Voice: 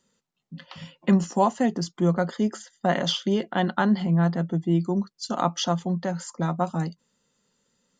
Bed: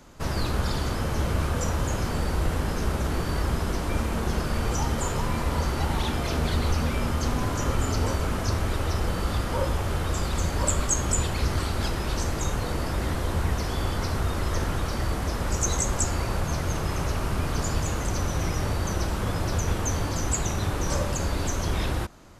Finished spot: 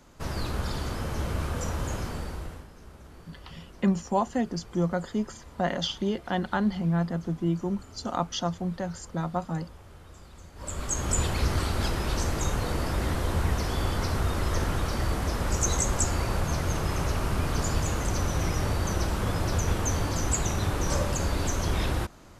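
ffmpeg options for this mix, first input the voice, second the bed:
-filter_complex "[0:a]adelay=2750,volume=0.596[s0];[1:a]volume=7.08,afade=t=out:st=1.94:d=0.74:silence=0.133352,afade=t=in:st=10.55:d=0.69:silence=0.0841395[s1];[s0][s1]amix=inputs=2:normalize=0"

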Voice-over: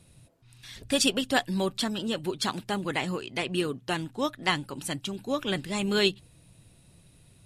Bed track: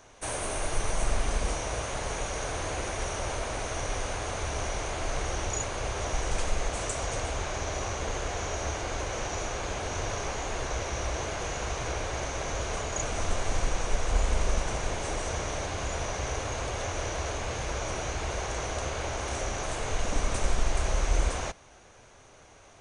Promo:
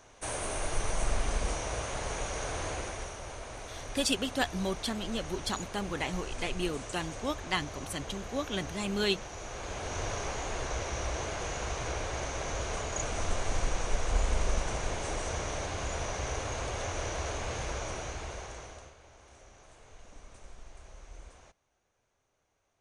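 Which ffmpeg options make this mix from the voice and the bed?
-filter_complex "[0:a]adelay=3050,volume=0.562[s0];[1:a]volume=1.78,afade=t=out:st=2.67:d=0.5:silence=0.421697,afade=t=in:st=9.37:d=0.65:silence=0.421697,afade=t=out:st=17.61:d=1.35:silence=0.0891251[s1];[s0][s1]amix=inputs=2:normalize=0"

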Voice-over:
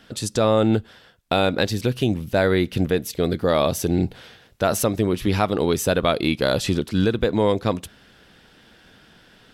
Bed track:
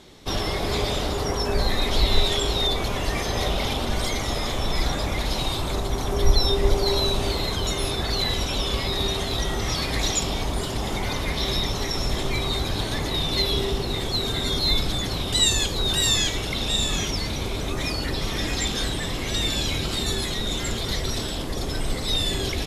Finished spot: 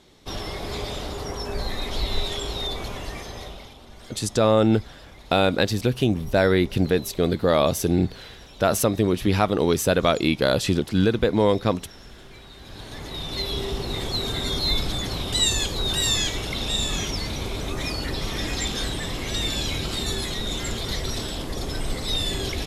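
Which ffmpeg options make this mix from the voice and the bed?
-filter_complex "[0:a]adelay=4000,volume=1[s0];[1:a]volume=4.47,afade=t=out:st=2.86:d=0.87:silence=0.188365,afade=t=in:st=12.57:d=1.44:silence=0.112202[s1];[s0][s1]amix=inputs=2:normalize=0"

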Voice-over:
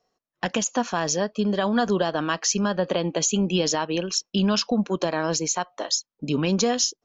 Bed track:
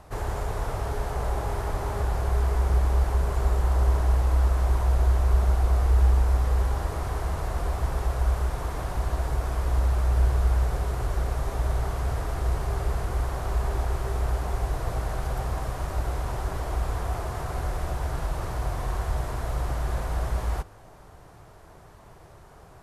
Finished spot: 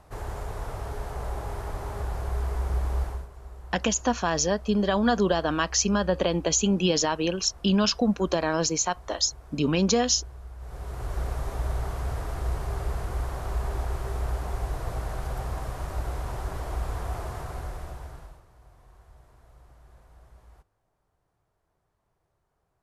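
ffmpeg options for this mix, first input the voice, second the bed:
-filter_complex "[0:a]adelay=3300,volume=0.944[s0];[1:a]volume=3.98,afade=t=out:st=3.01:d=0.27:silence=0.177828,afade=t=in:st=10.58:d=0.65:silence=0.141254,afade=t=out:st=17.27:d=1.16:silence=0.0707946[s1];[s0][s1]amix=inputs=2:normalize=0"

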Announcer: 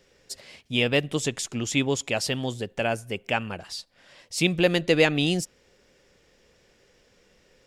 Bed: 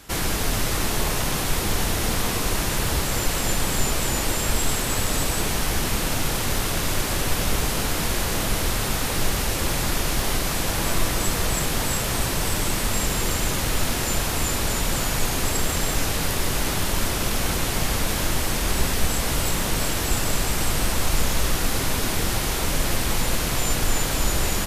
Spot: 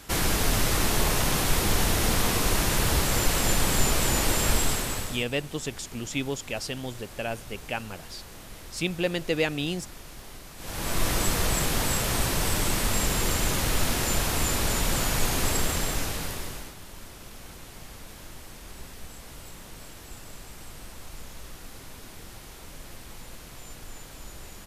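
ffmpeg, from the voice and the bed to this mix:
-filter_complex "[0:a]adelay=4400,volume=0.501[s0];[1:a]volume=7.94,afade=t=out:st=4.51:d=0.75:silence=0.1,afade=t=in:st=10.57:d=0.54:silence=0.11885,afade=t=out:st=15.53:d=1.21:silence=0.11885[s1];[s0][s1]amix=inputs=2:normalize=0"

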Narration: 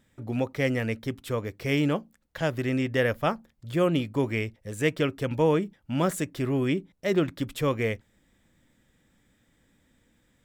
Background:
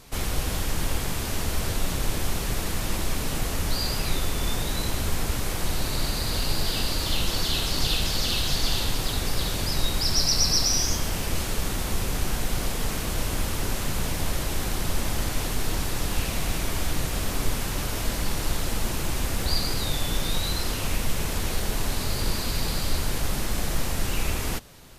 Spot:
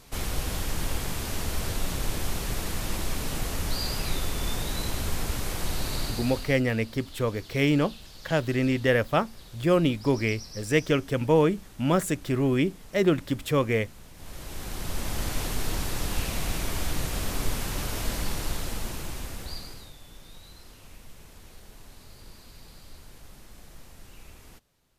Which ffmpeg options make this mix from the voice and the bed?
-filter_complex "[0:a]adelay=5900,volume=1.26[s0];[1:a]volume=6.31,afade=t=out:st=5.95:d=0.67:silence=0.11885,afade=t=in:st=14.14:d=1.18:silence=0.112202,afade=t=out:st=18.17:d=1.77:silence=0.105925[s1];[s0][s1]amix=inputs=2:normalize=0"

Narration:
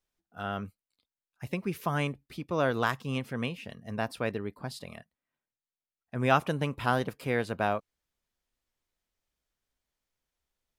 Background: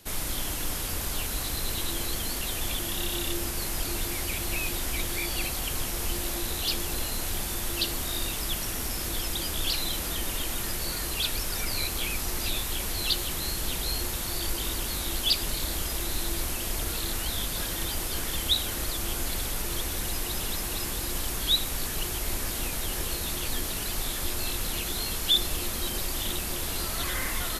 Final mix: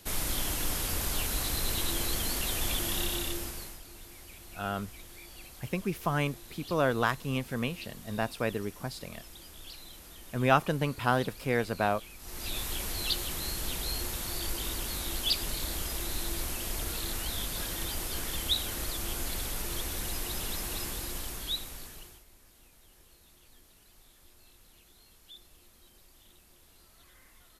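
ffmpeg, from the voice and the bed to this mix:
-filter_complex "[0:a]adelay=4200,volume=1.06[s0];[1:a]volume=5.01,afade=t=out:st=2.97:d=0.83:silence=0.125893,afade=t=in:st=12.19:d=0.44:silence=0.188365,afade=t=out:st=20.78:d=1.47:silence=0.0595662[s1];[s0][s1]amix=inputs=2:normalize=0"

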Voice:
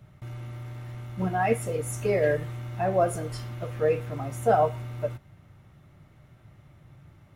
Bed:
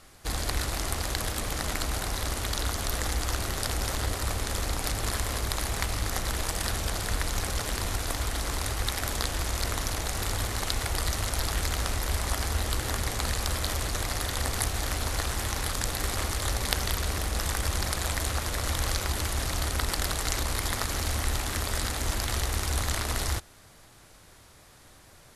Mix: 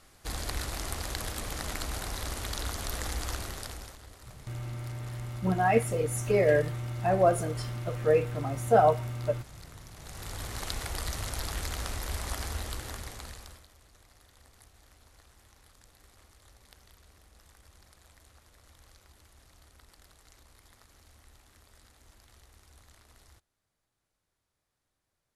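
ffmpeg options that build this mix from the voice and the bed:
-filter_complex "[0:a]adelay=4250,volume=1.06[s0];[1:a]volume=3.16,afade=t=out:st=3.29:d=0.69:silence=0.158489,afade=t=in:st=9.92:d=0.73:silence=0.177828,afade=t=out:st=12.44:d=1.23:silence=0.0668344[s1];[s0][s1]amix=inputs=2:normalize=0"

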